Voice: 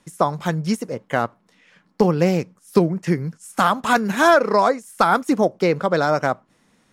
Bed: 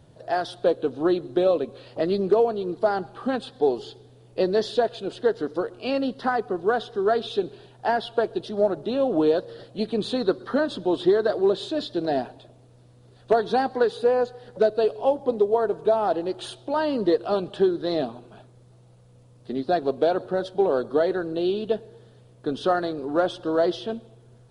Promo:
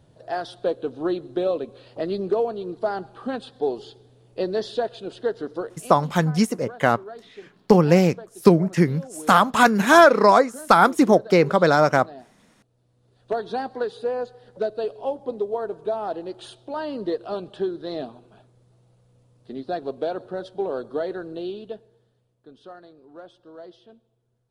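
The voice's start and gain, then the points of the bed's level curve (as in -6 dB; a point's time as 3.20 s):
5.70 s, +2.0 dB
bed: 5.71 s -3 dB
5.94 s -17.5 dB
12.52 s -17.5 dB
13.37 s -5.5 dB
21.35 s -5.5 dB
22.49 s -20.5 dB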